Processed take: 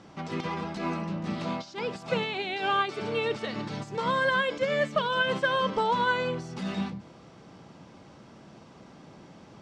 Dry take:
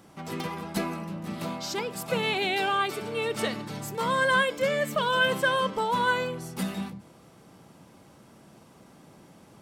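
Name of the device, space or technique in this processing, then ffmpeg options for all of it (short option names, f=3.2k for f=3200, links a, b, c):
de-esser from a sidechain: -filter_complex "[0:a]lowpass=f=6.2k:w=0.5412,lowpass=f=6.2k:w=1.3066,asplit=2[a][b];[b]highpass=f=5.6k:w=0.5412,highpass=f=5.6k:w=1.3066,apad=whole_len=424204[c];[a][c]sidechaincompress=threshold=-54dB:ratio=20:attack=3.6:release=90,volume=3dB"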